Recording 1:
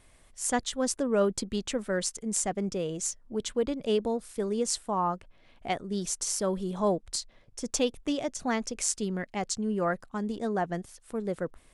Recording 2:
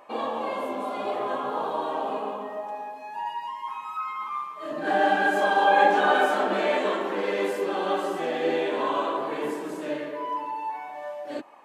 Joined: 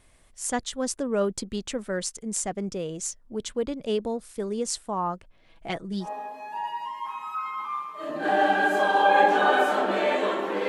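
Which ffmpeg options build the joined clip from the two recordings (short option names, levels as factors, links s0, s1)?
-filter_complex "[0:a]asettb=1/sr,asplit=3[s0][s1][s2];[s0]atrim=end=5.494[s3];[s1]atrim=start=5.49:end=6.09,asetpts=PTS-STARTPTS,afade=t=in:d=0.004:c=qsin,afade=t=out:st=0.596:d=0.004:c=qsin,aecho=1:1:6.1:0.66,atrim=end_sample=26460[s4];[s2]atrim=start=6.086[s5];[s3][s4]acrossfade=d=0.004:c1=hsin:c2=qsin[s6];[s6][s5]acrossfade=d=0.004:c1=qsin:c2=hsin,apad=whole_dur=10.68,atrim=end=10.68,atrim=end=6.09,asetpts=PTS-STARTPTS[s7];[1:a]atrim=start=2.61:end=7.3,asetpts=PTS-STARTPTS[s8];[s7][s8]acrossfade=d=0.1:c1=tri:c2=tri"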